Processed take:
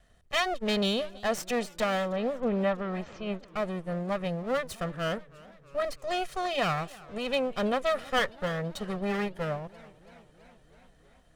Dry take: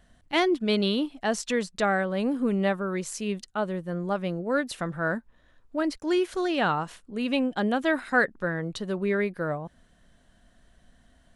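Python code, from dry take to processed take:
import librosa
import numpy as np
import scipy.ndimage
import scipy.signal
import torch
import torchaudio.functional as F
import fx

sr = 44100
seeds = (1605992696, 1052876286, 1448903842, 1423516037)

y = fx.lower_of_two(x, sr, delay_ms=1.6)
y = fx.gaussian_blur(y, sr, sigma=2.3, at=(2.11, 3.46))
y = fx.echo_warbled(y, sr, ms=325, feedback_pct=70, rate_hz=2.8, cents=129, wet_db=-22.0)
y = F.gain(torch.from_numpy(y), -2.0).numpy()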